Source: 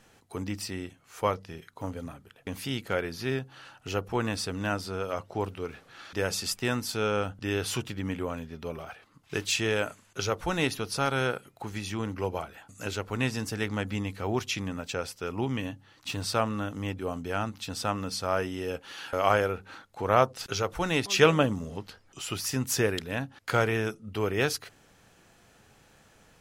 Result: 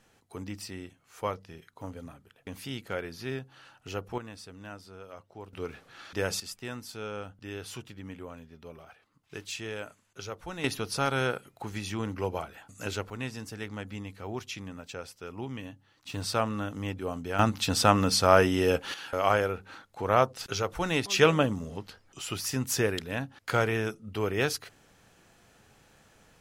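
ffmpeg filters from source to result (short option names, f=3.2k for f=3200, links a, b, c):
-af "asetnsamples=n=441:p=0,asendcmd='4.18 volume volume -14dB;5.53 volume volume -1dB;6.4 volume volume -10dB;10.64 volume volume -0.5dB;13.1 volume volume -7.5dB;16.14 volume volume -1dB;17.39 volume volume 8.5dB;18.94 volume volume -1dB',volume=-5dB"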